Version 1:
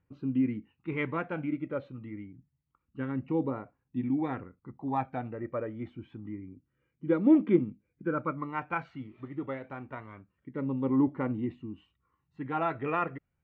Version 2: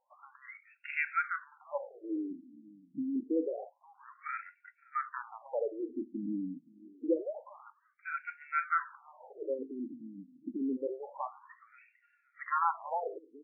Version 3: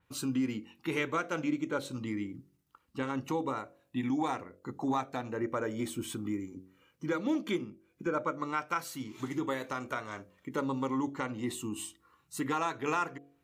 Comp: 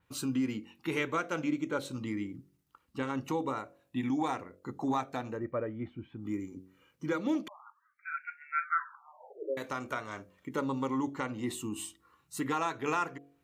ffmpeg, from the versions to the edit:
-filter_complex "[2:a]asplit=3[s0][s1][s2];[s0]atrim=end=5.46[s3];[0:a]atrim=start=5.3:end=6.34[s4];[s1]atrim=start=6.18:end=7.482[s5];[1:a]atrim=start=7.478:end=9.572[s6];[s2]atrim=start=9.568[s7];[s3][s4]acrossfade=d=0.16:c1=tri:c2=tri[s8];[s8][s5]acrossfade=d=0.16:c1=tri:c2=tri[s9];[s9][s6]acrossfade=d=0.004:c1=hsin:c2=hsin[s10];[s10][s7]acrossfade=d=0.004:c1=hsin:c2=hsin"

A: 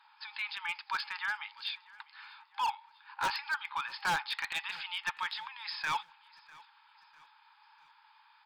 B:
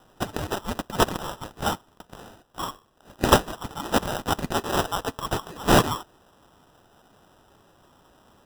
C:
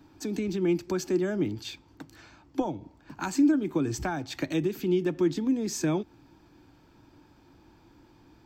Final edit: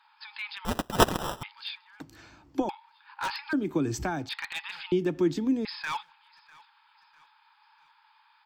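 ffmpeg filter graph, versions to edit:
-filter_complex "[2:a]asplit=3[s0][s1][s2];[0:a]asplit=5[s3][s4][s5][s6][s7];[s3]atrim=end=0.652[s8];[1:a]atrim=start=0.648:end=1.432[s9];[s4]atrim=start=1.428:end=2.002[s10];[s0]atrim=start=1.998:end=2.692[s11];[s5]atrim=start=2.688:end=3.532[s12];[s1]atrim=start=3.528:end=4.292[s13];[s6]atrim=start=4.288:end=4.922[s14];[s2]atrim=start=4.918:end=5.652[s15];[s7]atrim=start=5.648[s16];[s8][s9]acrossfade=d=0.004:c1=hsin:c2=hsin[s17];[s17][s10]acrossfade=d=0.004:c1=hsin:c2=hsin[s18];[s18][s11]acrossfade=d=0.004:c1=hsin:c2=hsin[s19];[s19][s12]acrossfade=d=0.004:c1=hsin:c2=hsin[s20];[s20][s13]acrossfade=d=0.004:c1=hsin:c2=hsin[s21];[s21][s14]acrossfade=d=0.004:c1=hsin:c2=hsin[s22];[s22][s15]acrossfade=d=0.004:c1=hsin:c2=hsin[s23];[s23][s16]acrossfade=d=0.004:c1=hsin:c2=hsin"

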